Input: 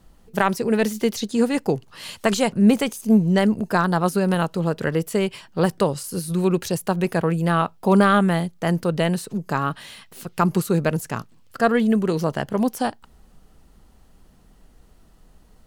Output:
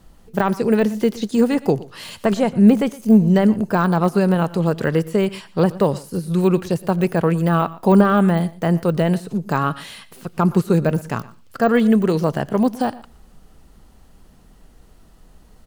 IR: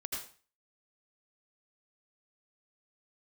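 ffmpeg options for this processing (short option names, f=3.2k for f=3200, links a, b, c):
-filter_complex "[0:a]deesser=0.9,aecho=1:1:118:0.1,asplit=2[a][b];[1:a]atrim=start_sample=2205[c];[b][c]afir=irnorm=-1:irlink=0,volume=-23dB[d];[a][d]amix=inputs=2:normalize=0,volume=3.5dB"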